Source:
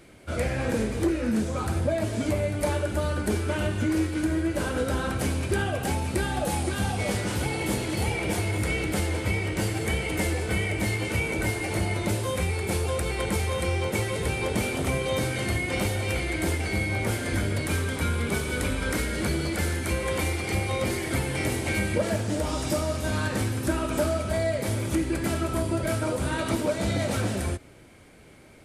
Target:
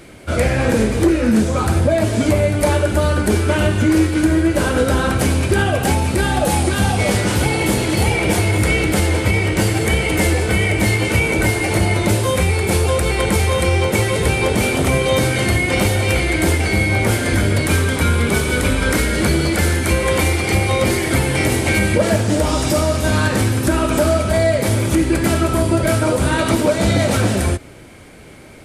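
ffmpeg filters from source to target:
-af "alimiter=level_in=15.5dB:limit=-1dB:release=50:level=0:latency=1,volume=-4.5dB"

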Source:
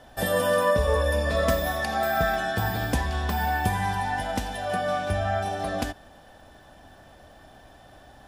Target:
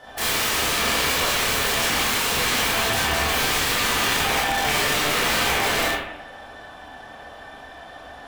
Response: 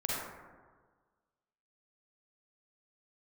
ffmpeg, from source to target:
-filter_complex "[0:a]asplit=2[a][b];[b]highpass=f=720:p=1,volume=12dB,asoftclip=type=tanh:threshold=-9dB[c];[a][c]amix=inputs=2:normalize=0,lowpass=f=4.7k:p=1,volume=-6dB,aeval=exprs='(mod(12.6*val(0)+1,2)-1)/12.6':c=same[d];[1:a]atrim=start_sample=2205,asetrate=79380,aresample=44100[e];[d][e]afir=irnorm=-1:irlink=0,volume=4.5dB"

